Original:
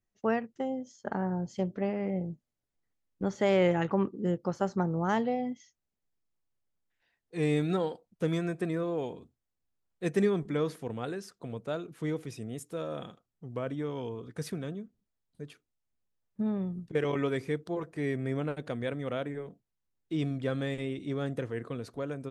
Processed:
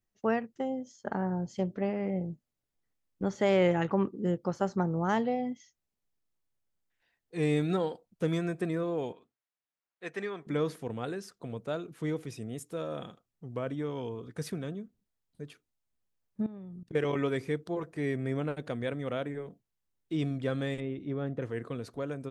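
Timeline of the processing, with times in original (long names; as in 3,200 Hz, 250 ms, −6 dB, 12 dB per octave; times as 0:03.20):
0:09.12–0:10.47: resonant band-pass 1,700 Hz, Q 0.73
0:16.46–0:16.91: output level in coarse steps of 22 dB
0:20.80–0:21.42: head-to-tape spacing loss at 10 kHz 28 dB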